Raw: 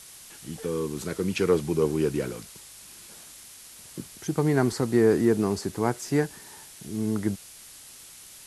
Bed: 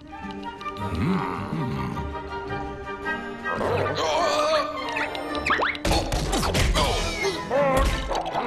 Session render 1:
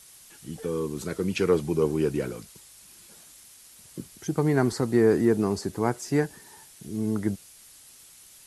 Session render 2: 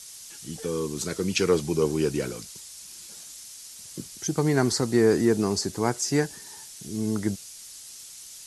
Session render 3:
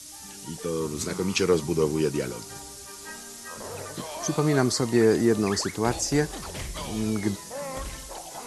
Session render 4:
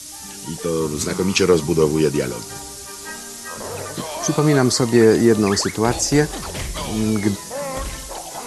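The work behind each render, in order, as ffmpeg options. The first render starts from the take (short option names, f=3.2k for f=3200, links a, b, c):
-af "afftdn=nr=6:nf=-47"
-af "equalizer=f=5.9k:t=o:w=1.6:g=11.5"
-filter_complex "[1:a]volume=-14dB[a];[0:a][a]amix=inputs=2:normalize=0"
-af "volume=7.5dB,alimiter=limit=-3dB:level=0:latency=1"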